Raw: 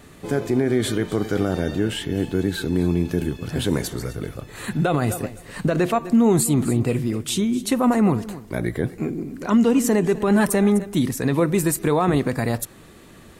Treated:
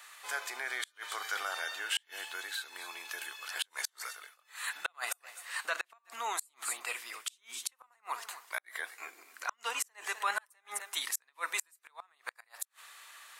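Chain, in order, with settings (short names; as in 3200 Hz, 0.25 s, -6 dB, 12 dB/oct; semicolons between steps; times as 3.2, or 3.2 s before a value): HPF 1000 Hz 24 dB/oct; 2.44–3.07 compressor 2.5:1, threshold -39 dBFS, peak gain reduction 9 dB; flipped gate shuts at -19 dBFS, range -37 dB; 4.07–4.74 dip -22.5 dB, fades 0.30 s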